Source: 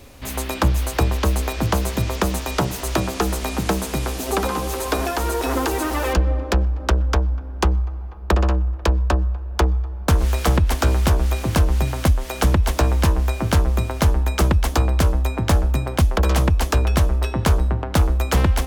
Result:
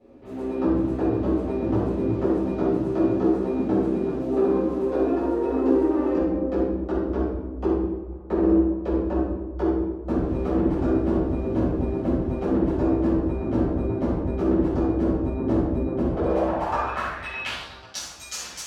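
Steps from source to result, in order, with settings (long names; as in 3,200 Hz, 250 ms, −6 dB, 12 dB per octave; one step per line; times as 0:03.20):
rectangular room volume 480 cubic metres, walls mixed, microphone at 6.5 metres
band-pass filter sweep 340 Hz → 6,200 Hz, 0:16.07–0:18.07
level −8 dB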